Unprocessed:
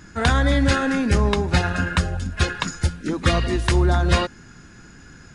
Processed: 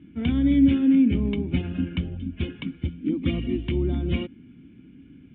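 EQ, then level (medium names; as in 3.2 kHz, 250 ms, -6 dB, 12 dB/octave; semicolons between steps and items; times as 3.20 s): cascade formant filter i; high-pass 57 Hz; peaking EQ 1.3 kHz +2.5 dB 0.72 oct; +6.0 dB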